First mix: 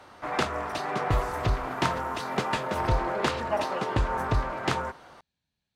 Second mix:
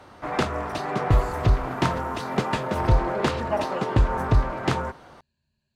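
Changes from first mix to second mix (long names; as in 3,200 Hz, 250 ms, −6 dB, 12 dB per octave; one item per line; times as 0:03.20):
speech: add EQ curve with evenly spaced ripples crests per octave 1.4, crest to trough 12 dB
master: add low-shelf EQ 450 Hz +7.5 dB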